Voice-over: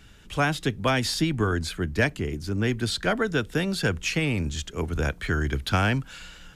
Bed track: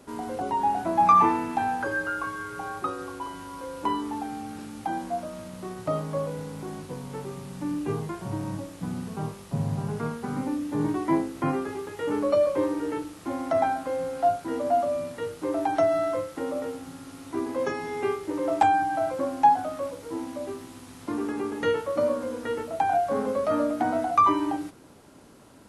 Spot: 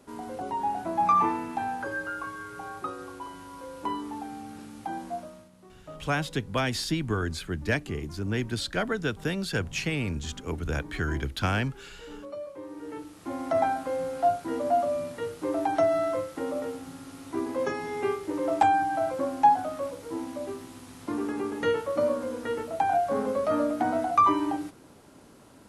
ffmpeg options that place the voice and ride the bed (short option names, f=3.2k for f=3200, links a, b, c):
-filter_complex "[0:a]adelay=5700,volume=-4dB[a];[1:a]volume=11dB,afade=t=out:st=5.15:d=0.35:silence=0.251189,afade=t=in:st=12.63:d=0.96:silence=0.16788[b];[a][b]amix=inputs=2:normalize=0"